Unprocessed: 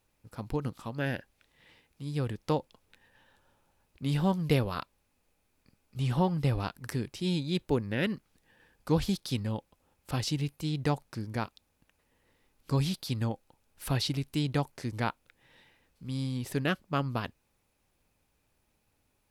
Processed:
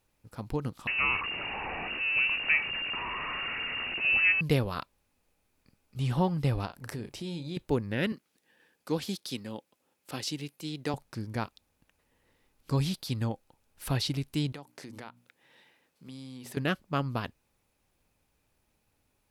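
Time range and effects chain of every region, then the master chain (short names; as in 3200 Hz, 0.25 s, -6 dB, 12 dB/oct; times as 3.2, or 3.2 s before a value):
0.87–4.41 zero-crossing step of -28.5 dBFS + inverted band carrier 2800 Hz
6.65–7.57 bell 640 Hz +6.5 dB 1.2 oct + doubler 35 ms -12 dB + compressor 3:1, threshold -35 dBFS
8.12–10.94 HPF 250 Hz + bell 890 Hz -4.5 dB 1.6 oct
14.52–16.57 HPF 190 Hz + notches 60/120/180/240/300 Hz + compressor 4:1, threshold -41 dBFS
whole clip: dry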